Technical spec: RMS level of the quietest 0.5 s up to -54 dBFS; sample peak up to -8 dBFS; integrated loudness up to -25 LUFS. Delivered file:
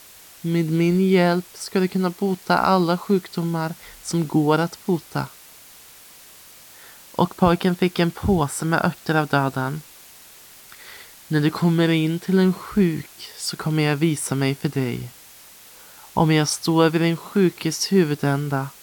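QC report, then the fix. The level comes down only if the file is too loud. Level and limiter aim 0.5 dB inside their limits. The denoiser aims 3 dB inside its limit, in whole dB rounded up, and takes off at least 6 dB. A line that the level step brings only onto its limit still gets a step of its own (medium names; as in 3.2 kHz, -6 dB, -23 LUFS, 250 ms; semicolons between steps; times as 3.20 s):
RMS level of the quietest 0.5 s -46 dBFS: fail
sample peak -5.0 dBFS: fail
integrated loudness -21.5 LUFS: fail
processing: noise reduction 7 dB, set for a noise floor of -46 dBFS; trim -4 dB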